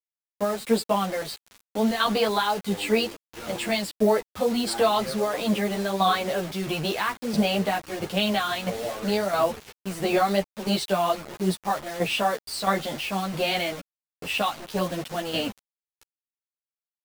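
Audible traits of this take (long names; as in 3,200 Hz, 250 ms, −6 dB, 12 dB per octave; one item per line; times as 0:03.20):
tremolo saw down 1.5 Hz, depth 65%
a quantiser's noise floor 6 bits, dither none
a shimmering, thickened sound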